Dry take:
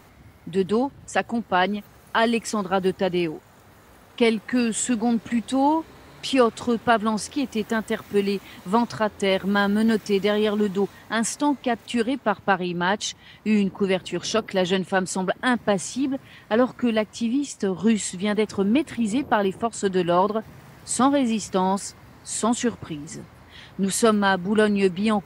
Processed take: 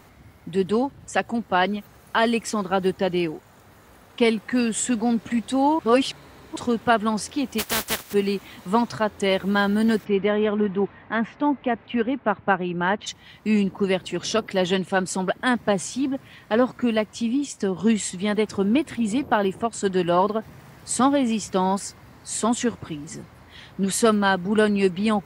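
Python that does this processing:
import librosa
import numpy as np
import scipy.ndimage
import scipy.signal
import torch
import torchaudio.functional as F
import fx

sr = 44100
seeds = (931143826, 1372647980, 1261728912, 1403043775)

y = fx.spec_flatten(x, sr, power=0.28, at=(7.58, 8.12), fade=0.02)
y = fx.lowpass(y, sr, hz=2700.0, slope=24, at=(10.04, 13.06), fade=0.02)
y = fx.edit(y, sr, fx.reverse_span(start_s=5.79, length_s=0.77), tone=tone)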